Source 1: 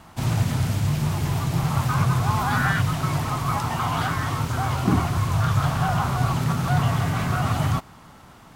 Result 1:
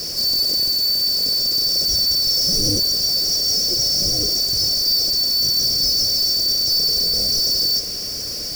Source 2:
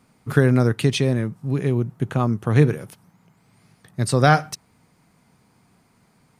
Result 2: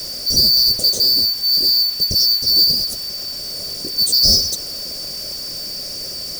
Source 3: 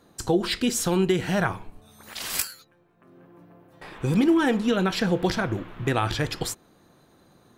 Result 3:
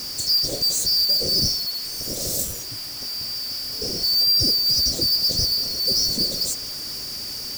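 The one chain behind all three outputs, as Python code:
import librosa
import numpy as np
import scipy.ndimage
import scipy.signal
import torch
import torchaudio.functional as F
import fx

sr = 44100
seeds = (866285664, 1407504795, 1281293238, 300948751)

y = fx.band_shuffle(x, sr, order='2341')
y = fx.power_curve(y, sr, exponent=0.35)
y = scipy.signal.sosfilt(scipy.signal.ellip(3, 1.0, 40, [580.0, 4700.0], 'bandstop', fs=sr, output='sos'), y)
y = fx.peak_eq(y, sr, hz=11000.0, db=-7.5, octaves=0.5)
y = fx.quant_dither(y, sr, seeds[0], bits=6, dither='triangular')
y = y * librosa.db_to_amplitude(-3.5)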